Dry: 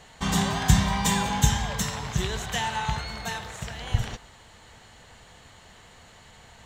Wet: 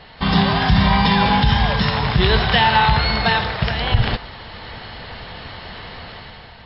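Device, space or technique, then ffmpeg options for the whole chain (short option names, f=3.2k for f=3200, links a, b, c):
low-bitrate web radio: -af "dynaudnorm=f=120:g=9:m=9dB,alimiter=limit=-12.5dB:level=0:latency=1:release=75,volume=8.5dB" -ar 12000 -c:a libmp3lame -b:a 32k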